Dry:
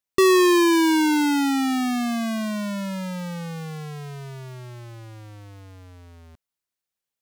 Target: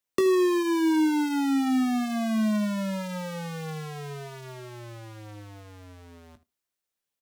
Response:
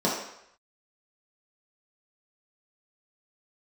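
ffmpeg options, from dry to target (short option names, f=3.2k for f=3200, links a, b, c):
-filter_complex "[0:a]asplit=2[a][b];[1:a]atrim=start_sample=2205,atrim=end_sample=3969[c];[b][c]afir=irnorm=-1:irlink=0,volume=-29.5dB[d];[a][d]amix=inputs=2:normalize=0,acrossover=split=150|580|1600[e][f][g][h];[e]acompressor=threshold=-50dB:ratio=4[i];[f]acompressor=threshold=-24dB:ratio=4[j];[g]acompressor=threshold=-39dB:ratio=4[k];[h]acompressor=threshold=-39dB:ratio=4[l];[i][j][k][l]amix=inputs=4:normalize=0,aecho=1:1:19|77:0.316|0.126"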